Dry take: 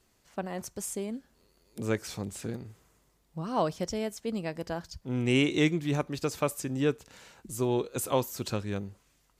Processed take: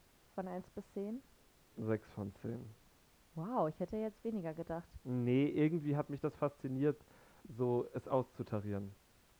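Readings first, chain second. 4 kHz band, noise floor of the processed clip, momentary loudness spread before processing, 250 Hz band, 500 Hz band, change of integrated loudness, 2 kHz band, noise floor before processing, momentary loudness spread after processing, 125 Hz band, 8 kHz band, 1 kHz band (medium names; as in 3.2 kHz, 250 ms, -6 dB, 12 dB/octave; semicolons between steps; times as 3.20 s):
-22.5 dB, -68 dBFS, 15 LU, -7.0 dB, -7.0 dB, -8.0 dB, -15.5 dB, -69 dBFS, 14 LU, -7.0 dB, under -25 dB, -8.0 dB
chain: low-pass 1.3 kHz 12 dB/octave; added noise pink -61 dBFS; trim -7 dB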